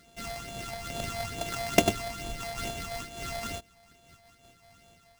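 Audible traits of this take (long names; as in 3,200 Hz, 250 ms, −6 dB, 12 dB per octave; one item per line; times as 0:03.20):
a buzz of ramps at a fixed pitch in blocks of 64 samples
phaser sweep stages 8, 2.3 Hz, lowest notch 360–1,800 Hz
aliases and images of a low sample rate 14,000 Hz, jitter 0%
amplitude modulation by smooth noise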